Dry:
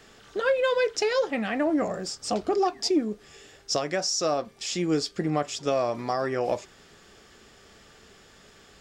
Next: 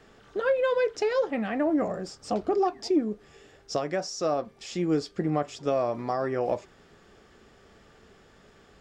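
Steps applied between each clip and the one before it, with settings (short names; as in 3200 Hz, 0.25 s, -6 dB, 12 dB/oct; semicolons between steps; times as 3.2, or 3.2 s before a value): high shelf 2400 Hz -11.5 dB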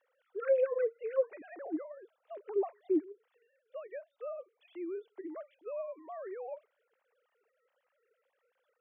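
sine-wave speech; gain -9 dB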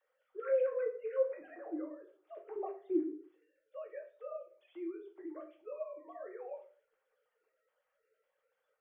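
shoebox room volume 33 m³, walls mixed, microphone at 0.55 m; gain -6.5 dB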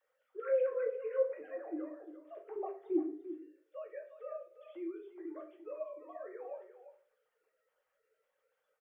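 echo 0.346 s -12 dB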